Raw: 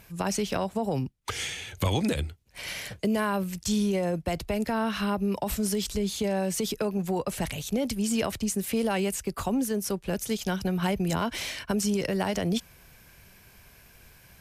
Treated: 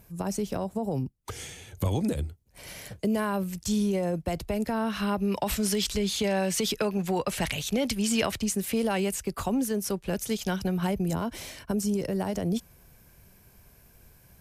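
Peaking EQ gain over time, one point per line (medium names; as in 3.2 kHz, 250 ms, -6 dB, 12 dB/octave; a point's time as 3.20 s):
peaking EQ 2.6 kHz 2.7 oct
2.65 s -11.5 dB
3.17 s -4 dB
4.89 s -4 dB
5.42 s +6 dB
8.10 s +6 dB
8.80 s -0.5 dB
10.58 s -0.5 dB
11.15 s -10 dB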